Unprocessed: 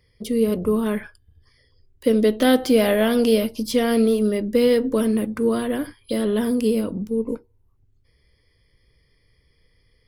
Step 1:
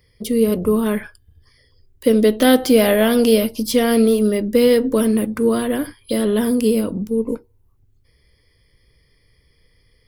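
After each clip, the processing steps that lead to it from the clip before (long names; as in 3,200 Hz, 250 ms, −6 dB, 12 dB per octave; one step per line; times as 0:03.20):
high-shelf EQ 9,900 Hz +7.5 dB
level +3.5 dB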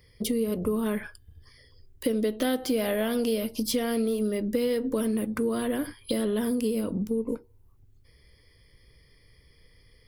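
downward compressor 4 to 1, threshold −26 dBFS, peak gain reduction 15 dB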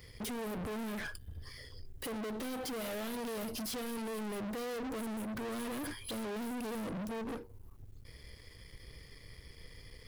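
brickwall limiter −23 dBFS, peak gain reduction 8.5 dB
leveller curve on the samples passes 2
soft clipping −38 dBFS, distortion −8 dB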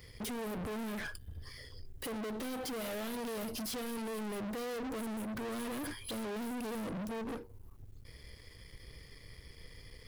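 no processing that can be heard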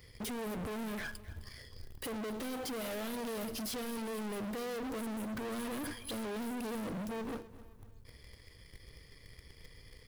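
in parallel at −10 dB: bit reduction 7 bits
on the sum: repeating echo 260 ms, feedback 42%, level −17 dB
level −3 dB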